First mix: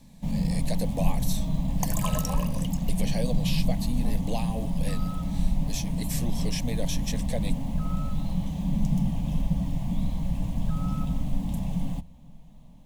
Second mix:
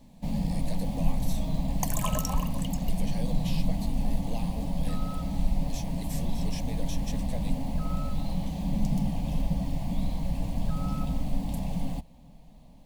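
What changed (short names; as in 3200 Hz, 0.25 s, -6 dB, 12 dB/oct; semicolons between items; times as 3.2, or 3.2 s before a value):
speech -8.0 dB; first sound: send -10.5 dB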